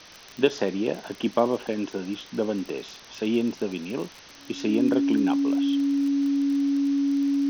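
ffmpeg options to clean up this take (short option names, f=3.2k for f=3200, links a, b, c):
-af "adeclick=t=4,bandreject=f=280:w=30,afwtdn=0.0071"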